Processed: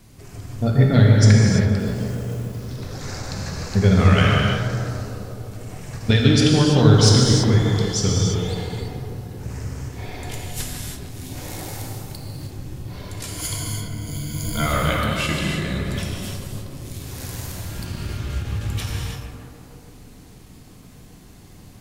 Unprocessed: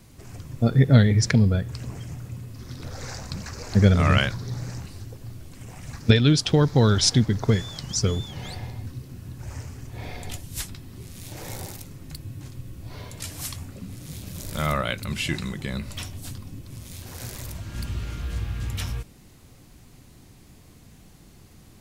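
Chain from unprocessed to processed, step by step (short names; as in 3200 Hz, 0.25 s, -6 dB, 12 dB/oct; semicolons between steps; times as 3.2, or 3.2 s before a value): 1.79–2.6 short-mantissa float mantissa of 2-bit; 13.28–14.66 ripple EQ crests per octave 1.8, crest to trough 17 dB; in parallel at -6 dB: soft clip -14.5 dBFS, distortion -12 dB; on the sum: tape echo 0.153 s, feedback 86%, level -5.5 dB, low-pass 1600 Hz; non-linear reverb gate 0.36 s flat, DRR -1.5 dB; ending taper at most 210 dB/s; gain -3 dB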